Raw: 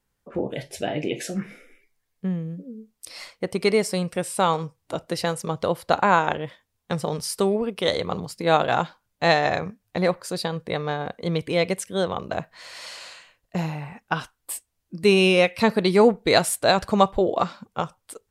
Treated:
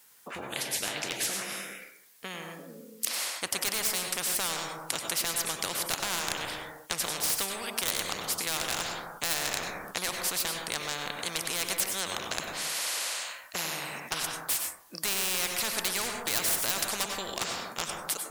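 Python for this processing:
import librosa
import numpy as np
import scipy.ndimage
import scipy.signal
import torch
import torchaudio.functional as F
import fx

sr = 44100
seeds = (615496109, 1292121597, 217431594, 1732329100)

y = fx.highpass(x, sr, hz=1500.0, slope=6)
y = fx.high_shelf(y, sr, hz=7200.0, db=9.0)
y = np.clip(y, -10.0 ** (-20.0 / 20.0), 10.0 ** (-20.0 / 20.0))
y = fx.rev_plate(y, sr, seeds[0], rt60_s=0.64, hf_ratio=0.25, predelay_ms=85, drr_db=7.0)
y = fx.spectral_comp(y, sr, ratio=4.0)
y = y * librosa.db_to_amplitude(7.5)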